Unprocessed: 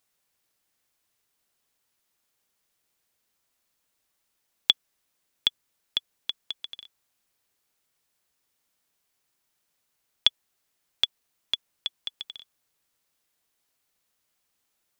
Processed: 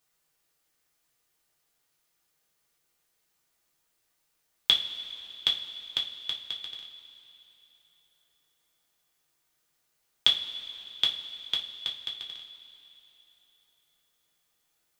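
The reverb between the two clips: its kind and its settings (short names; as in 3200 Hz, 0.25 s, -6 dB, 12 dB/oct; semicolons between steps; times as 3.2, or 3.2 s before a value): two-slope reverb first 0.27 s, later 3.4 s, from -18 dB, DRR -2 dB; gain -2.5 dB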